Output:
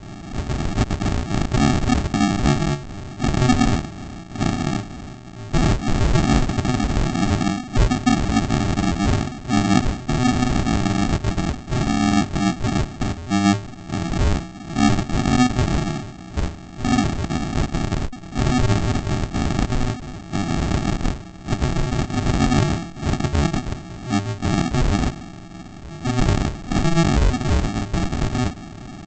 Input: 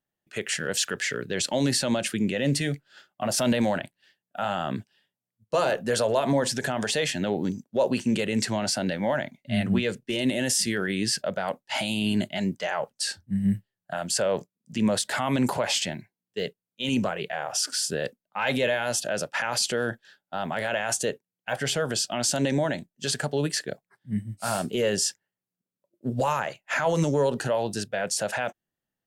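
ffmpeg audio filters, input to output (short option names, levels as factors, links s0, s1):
-af "aeval=exprs='val(0)+0.5*0.0237*sgn(val(0))':c=same,aresample=16000,acrusher=samples=32:mix=1:aa=0.000001,aresample=44100,volume=2"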